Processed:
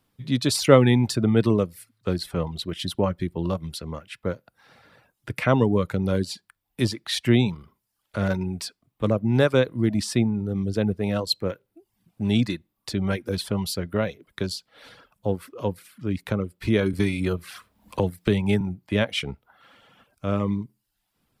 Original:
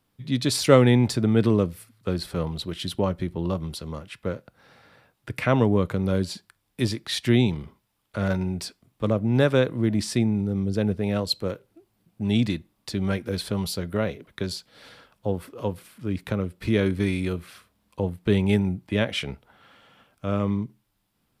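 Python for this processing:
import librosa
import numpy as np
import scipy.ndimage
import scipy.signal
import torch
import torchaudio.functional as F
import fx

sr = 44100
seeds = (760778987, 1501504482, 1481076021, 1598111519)

y = fx.dereverb_blind(x, sr, rt60_s=0.6)
y = fx.band_squash(y, sr, depth_pct=70, at=(16.93, 18.61))
y = y * 10.0 ** (1.5 / 20.0)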